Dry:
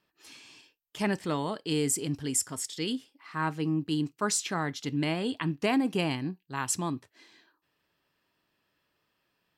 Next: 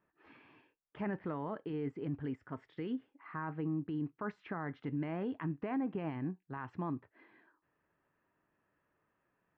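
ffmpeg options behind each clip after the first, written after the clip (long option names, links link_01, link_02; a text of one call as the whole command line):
ffmpeg -i in.wav -af "acompressor=threshold=-37dB:ratio=1.5,alimiter=level_in=3.5dB:limit=-24dB:level=0:latency=1:release=20,volume=-3.5dB,lowpass=frequency=1900:width=0.5412,lowpass=frequency=1900:width=1.3066,volume=-1dB" out.wav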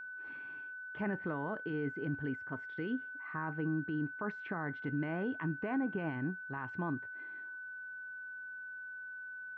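ffmpeg -i in.wav -af "aeval=exprs='val(0)+0.00631*sin(2*PI*1500*n/s)':channel_layout=same,volume=1dB" out.wav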